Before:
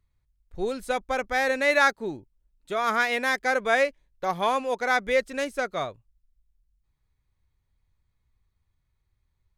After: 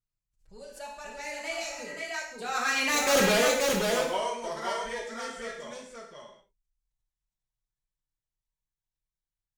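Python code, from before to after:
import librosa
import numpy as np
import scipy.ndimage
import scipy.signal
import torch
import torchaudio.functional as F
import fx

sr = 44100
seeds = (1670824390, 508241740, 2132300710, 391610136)

p1 = fx.doppler_pass(x, sr, speed_mps=38, closest_m=3.1, pass_at_s=3.19)
p2 = fx.peak_eq(p1, sr, hz=6900.0, db=12.5, octaves=1.2)
p3 = fx.env_flanger(p2, sr, rest_ms=6.4, full_db=-32.0)
p4 = fx.fold_sine(p3, sr, drive_db=18, ceiling_db=-16.5)
p5 = p3 + F.gain(torch.from_numpy(p4), -11.0).numpy()
p6 = fx.vibrato(p5, sr, rate_hz=0.67, depth_cents=11.0)
p7 = fx.echo_multitap(p6, sr, ms=(57, 530), db=(-10.0, -3.0))
p8 = fx.rev_gated(p7, sr, seeds[0], gate_ms=230, shape='falling', drr_db=-1.0)
p9 = fx.spec_repair(p8, sr, seeds[1], start_s=1.57, length_s=0.49, low_hz=890.0, high_hz=2200.0, source='both')
y = fx.pre_swell(p9, sr, db_per_s=150.0)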